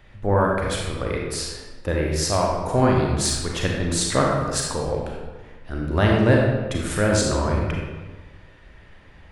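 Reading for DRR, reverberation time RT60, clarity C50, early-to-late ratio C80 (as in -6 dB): -1.5 dB, 1.3 s, 0.5 dB, 3.0 dB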